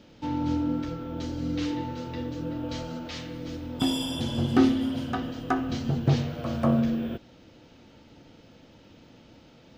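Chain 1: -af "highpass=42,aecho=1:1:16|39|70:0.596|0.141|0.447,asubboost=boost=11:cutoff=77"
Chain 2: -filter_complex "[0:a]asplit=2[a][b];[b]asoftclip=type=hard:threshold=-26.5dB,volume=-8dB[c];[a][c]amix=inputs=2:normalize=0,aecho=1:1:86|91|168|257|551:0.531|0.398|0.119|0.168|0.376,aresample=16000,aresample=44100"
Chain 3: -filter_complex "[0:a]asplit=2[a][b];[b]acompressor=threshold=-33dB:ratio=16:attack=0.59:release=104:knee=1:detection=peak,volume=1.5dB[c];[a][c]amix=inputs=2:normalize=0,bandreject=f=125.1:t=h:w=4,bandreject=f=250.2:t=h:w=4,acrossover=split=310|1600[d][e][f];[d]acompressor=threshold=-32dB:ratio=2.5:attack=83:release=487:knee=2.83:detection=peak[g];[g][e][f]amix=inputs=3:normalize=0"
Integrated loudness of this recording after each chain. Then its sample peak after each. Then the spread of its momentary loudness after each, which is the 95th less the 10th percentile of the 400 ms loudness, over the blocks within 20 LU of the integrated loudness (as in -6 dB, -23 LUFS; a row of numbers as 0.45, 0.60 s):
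-26.5, -25.5, -28.5 LUFS; -4.5, -8.0, -10.0 dBFS; 12, 11, 21 LU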